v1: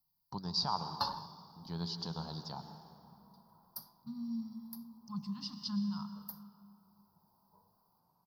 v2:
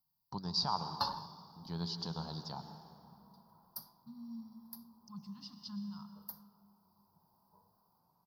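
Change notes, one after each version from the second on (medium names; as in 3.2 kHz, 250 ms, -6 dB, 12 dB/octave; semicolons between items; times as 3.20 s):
second voice -7.5 dB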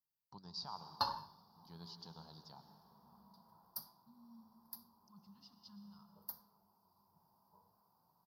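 first voice -12.0 dB; second voice -11.0 dB; master: add bass shelf 430 Hz -3.5 dB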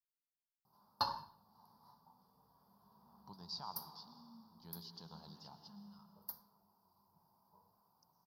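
first voice: entry +2.95 s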